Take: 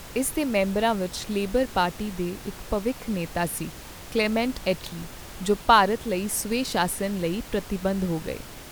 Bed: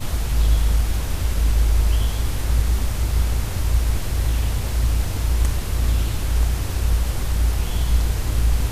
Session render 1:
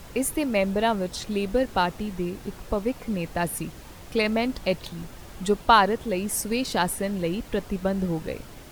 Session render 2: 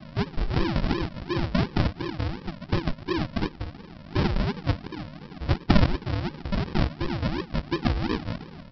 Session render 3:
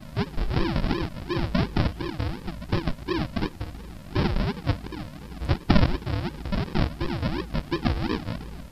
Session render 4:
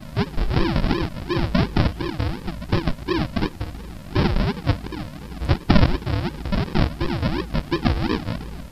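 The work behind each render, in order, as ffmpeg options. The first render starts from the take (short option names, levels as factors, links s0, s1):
-af "afftdn=nr=6:nf=-42"
-af "afreqshift=140,aresample=11025,acrusher=samples=22:mix=1:aa=0.000001:lfo=1:lforange=13.2:lforate=2.8,aresample=44100"
-filter_complex "[1:a]volume=0.0708[s0];[0:a][s0]amix=inputs=2:normalize=0"
-af "volume=1.68,alimiter=limit=0.794:level=0:latency=1"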